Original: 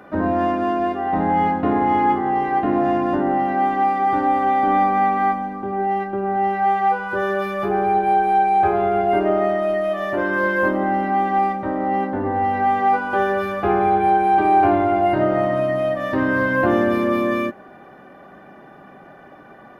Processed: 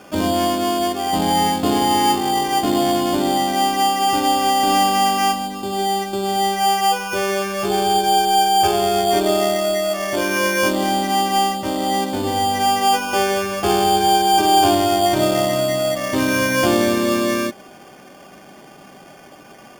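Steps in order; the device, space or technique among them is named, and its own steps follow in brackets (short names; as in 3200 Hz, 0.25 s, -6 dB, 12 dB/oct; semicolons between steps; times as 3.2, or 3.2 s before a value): crushed at another speed (playback speed 0.8×; sample-and-hold 14×; playback speed 1.25×); gain +1 dB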